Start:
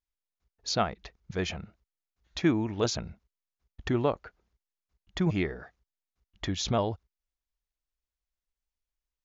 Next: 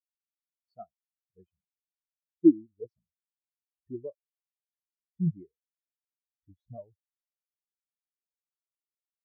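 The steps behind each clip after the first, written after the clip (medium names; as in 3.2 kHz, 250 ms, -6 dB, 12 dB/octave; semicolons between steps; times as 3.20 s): spectral contrast expander 4:1; trim +3.5 dB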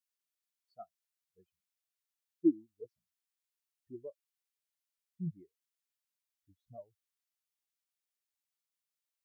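tilt shelf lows -8 dB, about 750 Hz; trim -3.5 dB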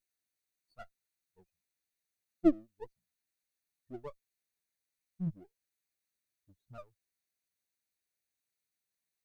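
comb filter that takes the minimum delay 0.47 ms; trim +2.5 dB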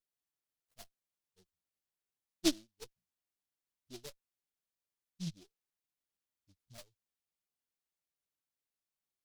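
delay time shaken by noise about 4.3 kHz, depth 0.25 ms; trim -5 dB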